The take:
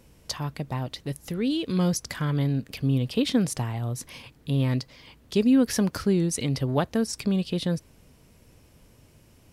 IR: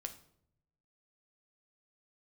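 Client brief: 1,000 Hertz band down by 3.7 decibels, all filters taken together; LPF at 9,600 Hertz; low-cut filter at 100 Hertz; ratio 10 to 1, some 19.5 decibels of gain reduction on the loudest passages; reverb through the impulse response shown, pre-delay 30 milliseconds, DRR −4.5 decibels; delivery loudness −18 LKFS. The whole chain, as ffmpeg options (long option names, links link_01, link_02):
-filter_complex "[0:a]highpass=100,lowpass=9600,equalizer=frequency=1000:width_type=o:gain=-5,acompressor=threshold=-37dB:ratio=10,asplit=2[link_01][link_02];[1:a]atrim=start_sample=2205,adelay=30[link_03];[link_02][link_03]afir=irnorm=-1:irlink=0,volume=7dB[link_04];[link_01][link_04]amix=inputs=2:normalize=0,volume=17.5dB"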